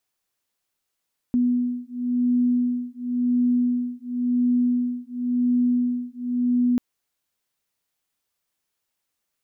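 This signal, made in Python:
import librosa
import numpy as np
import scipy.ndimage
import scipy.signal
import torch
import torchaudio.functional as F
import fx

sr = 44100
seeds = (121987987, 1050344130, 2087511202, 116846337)

y = fx.two_tone_beats(sr, length_s=5.44, hz=245.0, beat_hz=0.94, level_db=-22.5)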